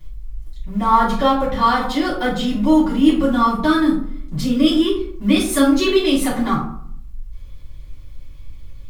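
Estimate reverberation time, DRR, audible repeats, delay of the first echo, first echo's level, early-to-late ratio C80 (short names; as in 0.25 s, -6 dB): 0.60 s, -8.5 dB, none, none, none, 9.0 dB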